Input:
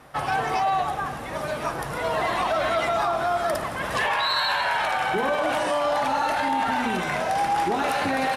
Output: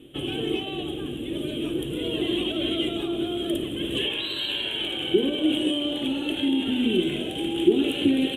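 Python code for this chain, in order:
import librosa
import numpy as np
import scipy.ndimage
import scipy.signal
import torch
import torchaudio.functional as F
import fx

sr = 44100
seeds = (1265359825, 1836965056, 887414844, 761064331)

y = fx.curve_eq(x, sr, hz=(190.0, 340.0, 660.0, 950.0, 2000.0, 3200.0, 4900.0, 8000.0), db=(0, 15, -16, -25, -15, 13, -30, -4))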